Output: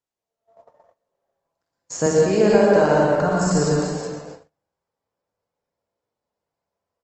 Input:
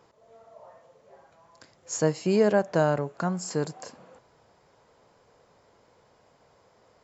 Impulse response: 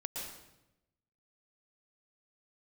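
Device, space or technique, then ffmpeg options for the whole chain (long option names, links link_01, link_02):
speakerphone in a meeting room: -filter_complex "[0:a]asettb=1/sr,asplit=3[link_01][link_02][link_03];[link_01]atrim=end=2.064[link_04];[link_02]atrim=start=2.06:end=3.04,asetpts=PTS-STARTPTS,afade=type=in:duration=0.004:curve=qsin,afade=type=out:start_time=0.976:duration=0.004:curve=qsin,highpass=220[link_05];[link_03]atrim=start=3.036[link_06];[link_04][link_05]acrossfade=duration=0.004:curve1=hsin:curve2=qsin[link_07];[link_07][link_06]acrossfade=duration=0.004:curve1=qsin:curve2=hsin,aecho=1:1:47|59|69|313:0.501|0.422|0.211|0.2[link_08];[1:a]atrim=start_sample=2205[link_09];[link_08][link_09]afir=irnorm=-1:irlink=0,asplit=2[link_10][link_11];[link_11]adelay=370,highpass=300,lowpass=3400,asoftclip=type=hard:threshold=-17dB,volume=-14dB[link_12];[link_10][link_12]amix=inputs=2:normalize=0,dynaudnorm=framelen=190:gausssize=5:maxgain=7.5dB,agate=range=-33dB:threshold=-38dB:ratio=16:detection=peak" -ar 48000 -c:a libopus -b:a 20k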